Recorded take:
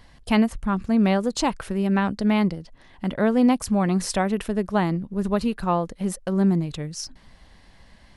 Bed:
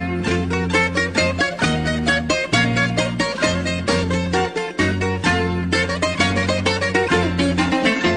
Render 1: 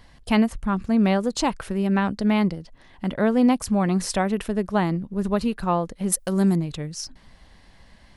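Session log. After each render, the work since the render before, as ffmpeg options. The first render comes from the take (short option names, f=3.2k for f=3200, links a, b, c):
-filter_complex "[0:a]asettb=1/sr,asplit=3[a][b][c];[a]atrim=end=6.124[d];[b]atrim=start=6.12:end=6.56,asetpts=PTS-STARTPTS,afade=t=in:d=0.004:c=qsin,afade=t=out:st=0.436:d=0.004:c=qsin,aemphasis=mode=production:type=75kf[e];[c]atrim=start=6.556[f];[d][e]acrossfade=d=0.004:c1=hsin:c2=qsin[g];[g][f]acrossfade=d=0.004:c1=qsin:c2=hsin"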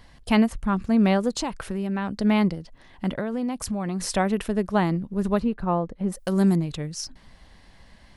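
-filter_complex "[0:a]asettb=1/sr,asplit=3[a][b][c];[a]atrim=end=1.344[d];[b]atrim=start=1.34:end=2.18,asetpts=PTS-STARTPTS,afade=t=in:d=0.004:c=qsin,afade=t=out:st=0.836:d=0.004:c=qsin,acompressor=threshold=-25dB:ratio=3:attack=3.2:release=140:knee=1:detection=peak[e];[c]atrim=start=2.176[f];[d][e]acrossfade=d=0.004:c1=hsin:c2=qsin[g];[g][f]acrossfade=d=0.004:c1=qsin:c2=hsin,asettb=1/sr,asplit=3[h][i][j];[h]atrim=end=3.194[k];[i]atrim=start=3.19:end=4.16,asetpts=PTS-STARTPTS,afade=t=in:d=0.004:c=qsin,afade=t=out:st=0.966:d=0.004:c=qsin,acompressor=threshold=-24dB:ratio=6:attack=3.2:release=140:knee=1:detection=peak[l];[j]atrim=start=4.156[m];[k][l]acrossfade=d=0.004:c1=hsin:c2=qsin[n];[n][m]acrossfade=d=0.004:c1=qsin:c2=hsin,asplit=3[o][p][q];[o]afade=t=out:st=5.39:d=0.02[r];[p]lowpass=f=1k:p=1,afade=t=in:st=5.39:d=0.02,afade=t=out:st=6.15:d=0.02[s];[q]afade=t=in:st=6.15:d=0.02[t];[r][s][t]amix=inputs=3:normalize=0"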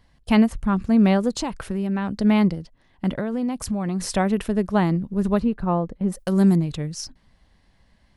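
-af "agate=range=-10dB:threshold=-38dB:ratio=16:detection=peak,equalizer=f=94:w=0.31:g=4"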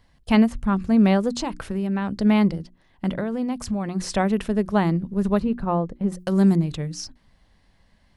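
-filter_complex "[0:a]acrossover=split=8500[a][b];[b]acompressor=threshold=-52dB:ratio=4:attack=1:release=60[c];[a][c]amix=inputs=2:normalize=0,bandreject=f=60:t=h:w=6,bandreject=f=120:t=h:w=6,bandreject=f=180:t=h:w=6,bandreject=f=240:t=h:w=6,bandreject=f=300:t=h:w=6,bandreject=f=360:t=h:w=6"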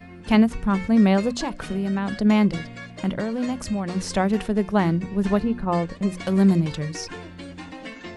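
-filter_complex "[1:a]volume=-20dB[a];[0:a][a]amix=inputs=2:normalize=0"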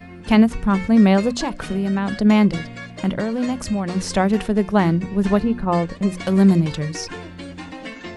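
-af "volume=3.5dB,alimiter=limit=-3dB:level=0:latency=1"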